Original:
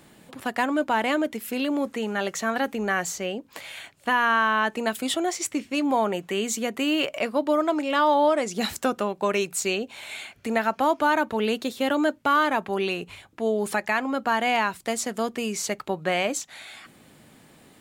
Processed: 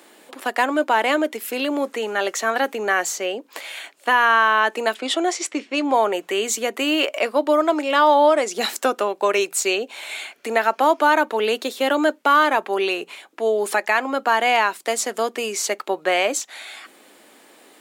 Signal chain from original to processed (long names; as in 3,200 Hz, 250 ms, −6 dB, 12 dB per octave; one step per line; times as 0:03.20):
high-pass filter 310 Hz 24 dB per octave
0:04.94–0:06.10: low-pass that shuts in the quiet parts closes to 2,900 Hz, open at −18.5 dBFS
level +5.5 dB